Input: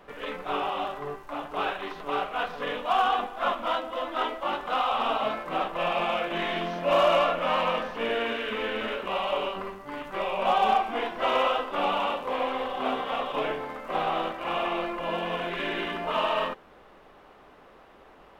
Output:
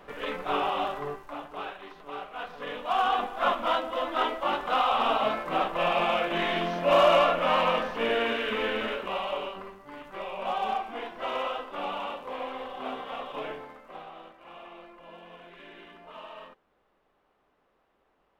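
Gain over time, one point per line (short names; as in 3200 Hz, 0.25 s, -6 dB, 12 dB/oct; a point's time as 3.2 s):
1 s +1.5 dB
1.73 s -9.5 dB
2.24 s -9.5 dB
3.35 s +1.5 dB
8.69 s +1.5 dB
9.69 s -7 dB
13.57 s -7 dB
14.11 s -18 dB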